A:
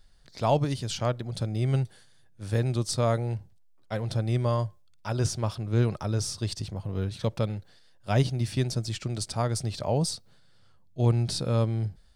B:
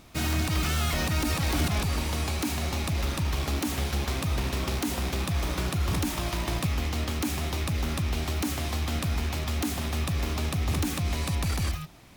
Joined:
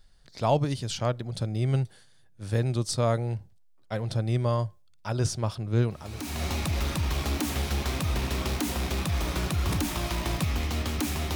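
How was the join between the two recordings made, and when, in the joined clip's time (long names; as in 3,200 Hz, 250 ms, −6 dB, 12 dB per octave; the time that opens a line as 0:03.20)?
A
0:06.12: continue with B from 0:02.34, crossfade 0.66 s quadratic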